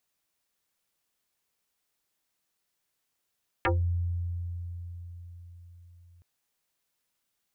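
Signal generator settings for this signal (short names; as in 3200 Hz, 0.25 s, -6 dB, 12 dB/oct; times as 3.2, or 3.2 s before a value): FM tone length 2.57 s, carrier 86.9 Hz, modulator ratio 4.96, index 6.6, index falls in 0.19 s exponential, decay 4.74 s, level -21.5 dB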